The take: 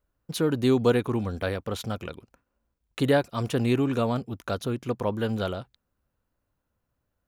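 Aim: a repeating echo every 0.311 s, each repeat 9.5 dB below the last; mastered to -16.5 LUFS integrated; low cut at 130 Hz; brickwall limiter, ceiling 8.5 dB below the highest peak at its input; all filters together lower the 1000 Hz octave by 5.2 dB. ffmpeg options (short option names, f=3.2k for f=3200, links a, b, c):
-af "highpass=130,equalizer=f=1k:t=o:g=-7.5,alimiter=limit=-18.5dB:level=0:latency=1,aecho=1:1:311|622|933|1244:0.335|0.111|0.0365|0.012,volume=14dB"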